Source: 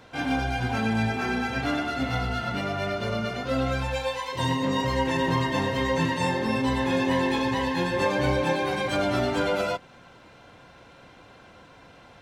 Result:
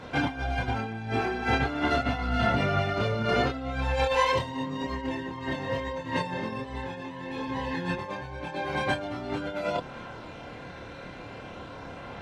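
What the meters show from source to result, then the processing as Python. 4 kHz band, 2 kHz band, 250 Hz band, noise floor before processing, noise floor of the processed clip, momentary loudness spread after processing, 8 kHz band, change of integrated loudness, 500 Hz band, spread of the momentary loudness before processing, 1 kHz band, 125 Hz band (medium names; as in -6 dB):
-4.0 dB, -2.5 dB, -5.5 dB, -51 dBFS, -42 dBFS, 16 LU, -7.5 dB, -3.5 dB, -3.5 dB, 5 LU, -2.0 dB, -3.0 dB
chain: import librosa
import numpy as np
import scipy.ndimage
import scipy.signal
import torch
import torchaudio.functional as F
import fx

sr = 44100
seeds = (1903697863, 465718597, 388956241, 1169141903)

y = fx.lowpass(x, sr, hz=3400.0, slope=6)
y = fx.over_compress(y, sr, threshold_db=-31.0, ratio=-0.5)
y = fx.chorus_voices(y, sr, voices=2, hz=0.2, base_ms=28, depth_ms=1.4, mix_pct=45)
y = y * librosa.db_to_amplitude(6.0)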